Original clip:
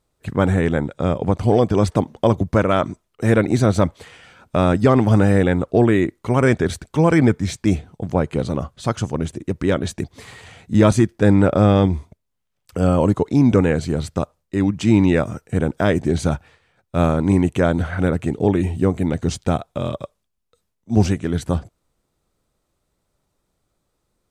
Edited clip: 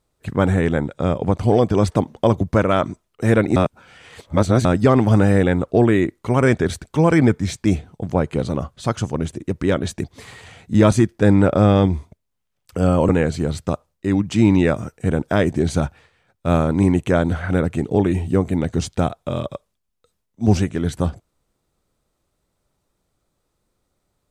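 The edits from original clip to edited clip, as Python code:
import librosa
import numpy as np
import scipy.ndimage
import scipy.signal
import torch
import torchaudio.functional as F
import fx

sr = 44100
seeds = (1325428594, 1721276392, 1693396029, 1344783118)

y = fx.edit(x, sr, fx.reverse_span(start_s=3.56, length_s=1.09),
    fx.cut(start_s=13.09, length_s=0.49), tone=tone)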